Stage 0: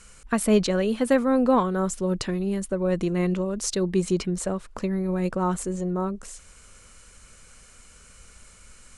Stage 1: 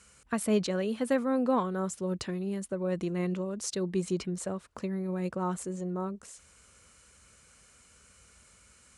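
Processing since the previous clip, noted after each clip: HPF 57 Hz 24 dB/oct; gain -7 dB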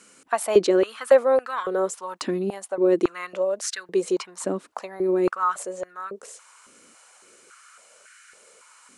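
stepped high-pass 3.6 Hz 280–1600 Hz; gain +5.5 dB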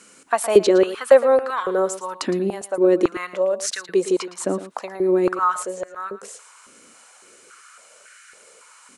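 echo 0.113 s -14 dB; gain +3.5 dB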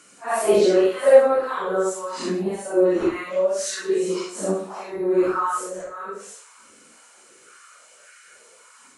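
phase scrambler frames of 0.2 s; gain -1.5 dB

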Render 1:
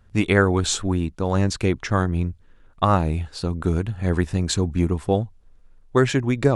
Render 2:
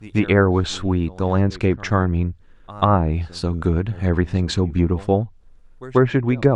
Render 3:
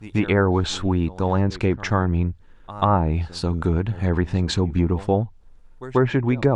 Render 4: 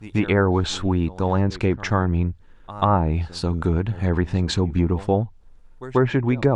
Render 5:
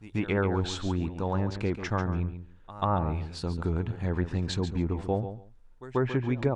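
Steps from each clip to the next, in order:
pre-echo 0.139 s -21 dB; treble ducked by the level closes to 1400 Hz, closed at -13.5 dBFS; gain +2.5 dB
bell 880 Hz +6 dB 0.22 oct; in parallel at 0 dB: limiter -12.5 dBFS, peak gain reduction 11.5 dB; on the sum: gain -6 dB
nothing audible
feedback echo 0.141 s, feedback 16%, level -10.5 dB; gain -8.5 dB

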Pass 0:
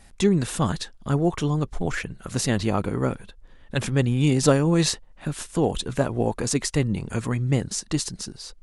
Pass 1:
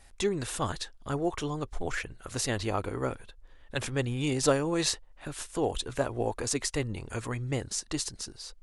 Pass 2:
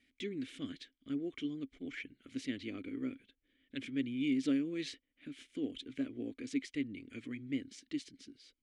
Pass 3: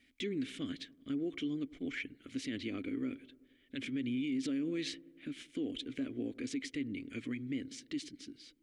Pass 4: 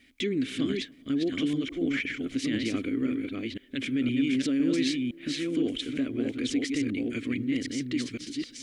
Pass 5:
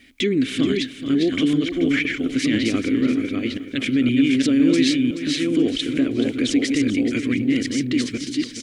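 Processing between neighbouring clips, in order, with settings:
bell 180 Hz -12.5 dB 0.96 oct; gain -4 dB
vowel filter i; gain +3.5 dB
dark delay 95 ms, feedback 65%, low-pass 890 Hz, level -22 dB; limiter -33.5 dBFS, peak gain reduction 10.5 dB; gain +4.5 dB
reverse delay 0.511 s, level -3 dB; gain +8.5 dB
feedback echo 0.429 s, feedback 33%, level -11.5 dB; gain +8.5 dB

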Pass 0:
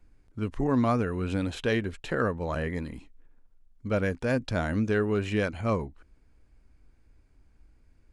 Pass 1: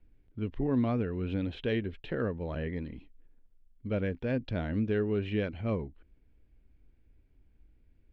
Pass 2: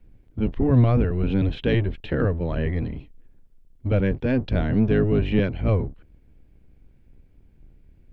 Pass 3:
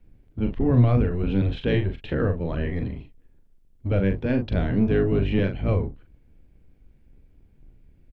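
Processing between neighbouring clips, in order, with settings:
EQ curve 410 Hz 0 dB, 1200 Hz -10 dB, 1900 Hz -4 dB, 3300 Hz -1 dB, 7800 Hz -29 dB; gain -3 dB
octaver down 1 oct, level +2 dB; gain +7.5 dB
doubler 41 ms -7 dB; gain -2 dB

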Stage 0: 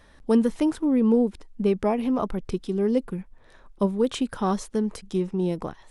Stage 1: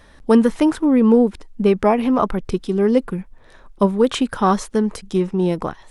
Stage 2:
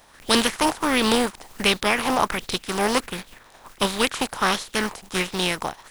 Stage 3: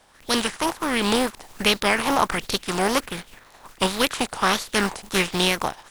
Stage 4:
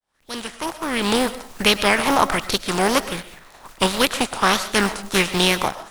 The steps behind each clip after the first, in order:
dynamic EQ 1400 Hz, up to +6 dB, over -39 dBFS, Q 0.73; gain +6 dB
spectral contrast lowered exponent 0.43; LFO bell 1.4 Hz 750–4000 Hz +10 dB; gain -7.5 dB
wow and flutter 130 cents; AGC; gain -3.5 dB
opening faded in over 1.36 s; on a send at -13 dB: reverb RT60 0.35 s, pre-delay 80 ms; on the sum: gain +3 dB

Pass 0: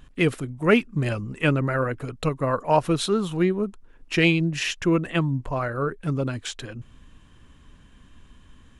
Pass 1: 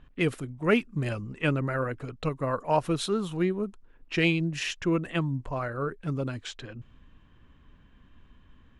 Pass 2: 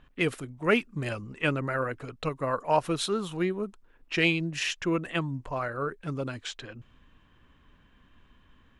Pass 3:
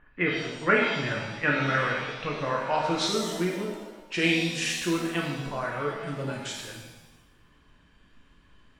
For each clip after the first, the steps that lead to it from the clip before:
low-pass opened by the level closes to 2700 Hz, open at -21 dBFS; gain -5 dB
low shelf 340 Hz -7 dB; gain +2 dB
low-pass sweep 1800 Hz -> 8900 Hz, 1.91–3.51; shimmer reverb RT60 1 s, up +7 st, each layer -8 dB, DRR -2 dB; gain -3.5 dB

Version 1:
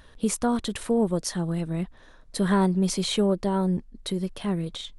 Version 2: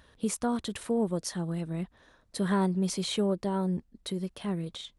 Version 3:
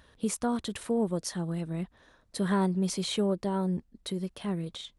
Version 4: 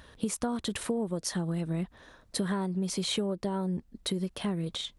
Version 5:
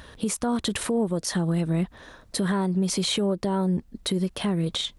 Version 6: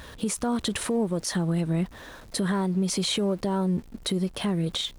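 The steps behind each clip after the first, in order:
HPF 52 Hz 12 dB/oct; gain -5 dB
nothing audible
compressor 10:1, threshold -33 dBFS, peak gain reduction 12 dB; gain +6 dB
limiter -23.5 dBFS, peak gain reduction 7 dB; gain +7.5 dB
zero-crossing step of -43.5 dBFS; gain -1.5 dB

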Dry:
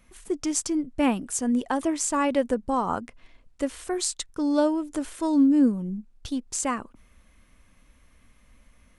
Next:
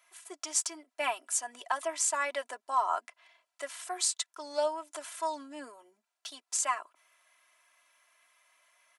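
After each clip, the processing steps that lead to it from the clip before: HPF 670 Hz 24 dB/oct; comb 3 ms, depth 77%; gain -3 dB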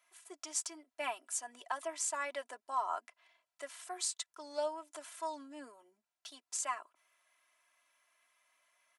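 low shelf 220 Hz +8 dB; gain -7 dB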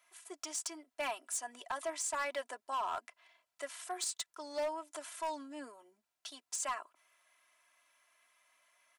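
limiter -28 dBFS, peak gain reduction 8.5 dB; overloaded stage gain 34 dB; gain +3 dB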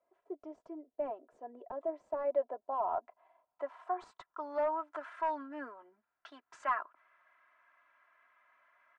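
low-pass sweep 490 Hz -> 1500 Hz, 1.75–5.15; gain +1.5 dB

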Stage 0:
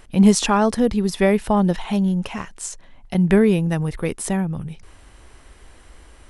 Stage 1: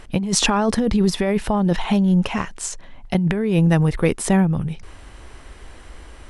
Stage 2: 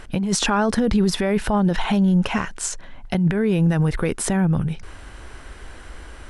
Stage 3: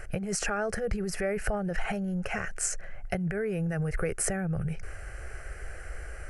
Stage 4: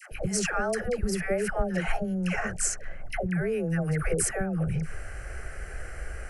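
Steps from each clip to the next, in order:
high shelf 9600 Hz -10 dB; negative-ratio compressor -20 dBFS, ratio -1; gain +3 dB
limiter -12.5 dBFS, peak gain reduction 9.5 dB; bell 1500 Hz +6.5 dB 0.26 oct; gain +1.5 dB
compressor, threshold -22 dBFS, peak gain reduction 8 dB; fixed phaser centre 980 Hz, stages 6
hum 60 Hz, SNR 27 dB; dispersion lows, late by 0.117 s, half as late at 700 Hz; gain +2.5 dB

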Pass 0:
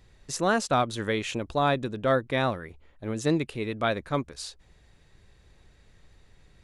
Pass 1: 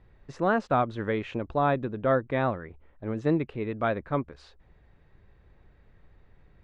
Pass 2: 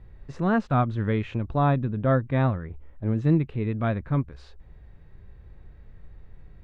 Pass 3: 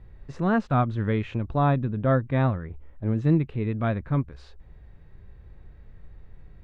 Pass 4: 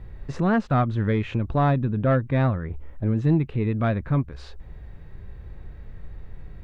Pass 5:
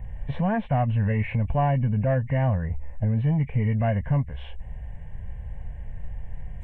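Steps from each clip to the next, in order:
LPF 1800 Hz 12 dB/oct
dynamic EQ 480 Hz, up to -6 dB, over -38 dBFS, Q 0.73; harmonic-percussive split harmonic +7 dB; low shelf 250 Hz +9 dB; gain -3 dB
nothing audible
in parallel at +3 dB: compressor, threshold -32 dBFS, peak gain reduction 15.5 dB; on the sum: soft clip -10.5 dBFS, distortion -21 dB
nonlinear frequency compression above 1700 Hz 1.5:1; limiter -17 dBFS, peak gain reduction 6.5 dB; fixed phaser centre 1300 Hz, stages 6; gain +5 dB

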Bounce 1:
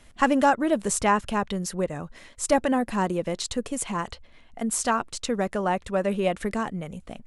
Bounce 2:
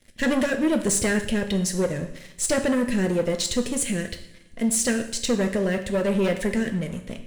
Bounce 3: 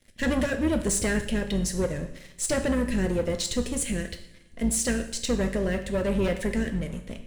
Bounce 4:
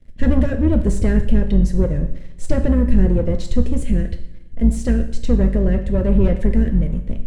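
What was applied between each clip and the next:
elliptic band-stop 590–1700 Hz; sample leveller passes 3; two-slope reverb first 0.65 s, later 1.9 s, from -20 dB, DRR 5.5 dB; gain -5.5 dB
octaver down 2 oct, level -4 dB; gain -3.5 dB
tilt -4 dB/oct

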